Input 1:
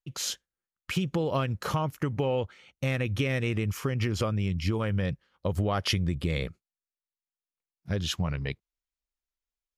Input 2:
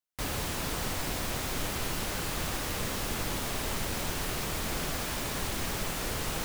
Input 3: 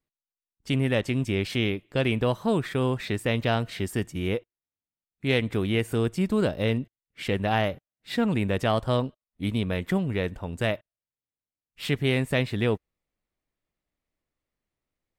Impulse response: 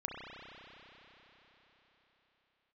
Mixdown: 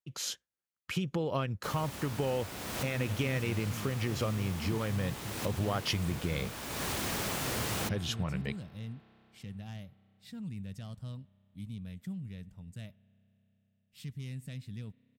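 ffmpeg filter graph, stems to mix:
-filter_complex "[0:a]volume=-4.5dB,asplit=2[link_01][link_02];[1:a]adelay=1450,volume=-1.5dB,asplit=2[link_03][link_04];[link_04]volume=-13dB[link_05];[2:a]asoftclip=type=tanh:threshold=-15dB,firequalizer=gain_entry='entry(180,0);entry(340,-19);entry(5400,-2)':delay=0.05:min_phase=1,adelay=2150,volume=-11.5dB,asplit=2[link_06][link_07];[link_07]volume=-22.5dB[link_08];[link_02]apad=whole_len=347952[link_09];[link_03][link_09]sidechaincompress=threshold=-53dB:ratio=3:attack=16:release=280[link_10];[3:a]atrim=start_sample=2205[link_11];[link_05][link_08]amix=inputs=2:normalize=0[link_12];[link_12][link_11]afir=irnorm=-1:irlink=0[link_13];[link_01][link_10][link_06][link_13]amix=inputs=4:normalize=0,highpass=74"

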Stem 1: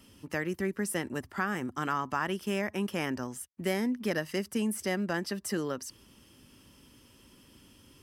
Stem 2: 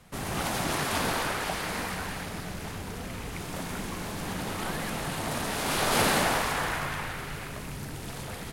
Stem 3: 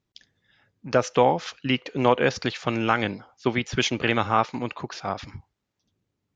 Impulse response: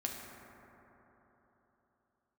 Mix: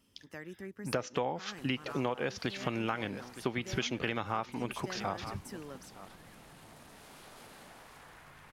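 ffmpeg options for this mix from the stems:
-filter_complex "[0:a]volume=-13dB[link_01];[1:a]acompressor=threshold=-32dB:ratio=5,adelay=1450,volume=-19dB[link_02];[2:a]volume=-2.5dB,asplit=2[link_03][link_04];[link_04]volume=-20.5dB,aecho=0:1:914:1[link_05];[link_01][link_02][link_03][link_05]amix=inputs=4:normalize=0,acompressor=threshold=-30dB:ratio=5"

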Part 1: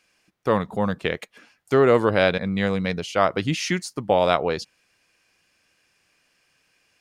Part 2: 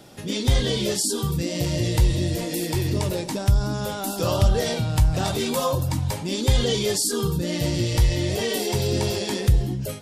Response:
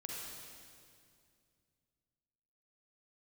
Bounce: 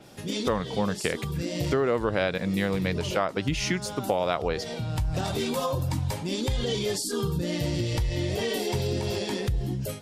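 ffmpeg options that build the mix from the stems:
-filter_complex "[0:a]volume=-1dB,asplit=2[link_01][link_02];[1:a]alimiter=limit=-14dB:level=0:latency=1:release=116,adynamicequalizer=threshold=0.00631:dfrequency=4900:dqfactor=0.7:tfrequency=4900:tqfactor=0.7:attack=5:release=100:ratio=0.375:range=3:mode=cutabove:tftype=highshelf,volume=-2.5dB[link_03];[link_02]apad=whole_len=441450[link_04];[link_03][link_04]sidechaincompress=threshold=-24dB:ratio=8:attack=11:release=861[link_05];[link_01][link_05]amix=inputs=2:normalize=0,acompressor=threshold=-22dB:ratio=4"

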